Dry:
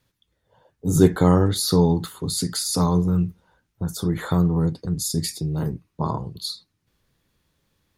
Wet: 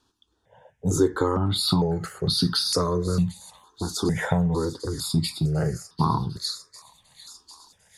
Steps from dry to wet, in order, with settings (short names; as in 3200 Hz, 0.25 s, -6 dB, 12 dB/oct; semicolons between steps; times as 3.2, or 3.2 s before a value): LPF 6800 Hz 12 dB/oct; low shelf 81 Hz -11 dB; compressor 6:1, threshold -22 dBFS, peak gain reduction 12 dB; on a send: thin delay 0.749 s, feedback 72%, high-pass 2100 Hz, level -15.5 dB; on the sum: step phaser 2.2 Hz 560–2100 Hz; gain +8 dB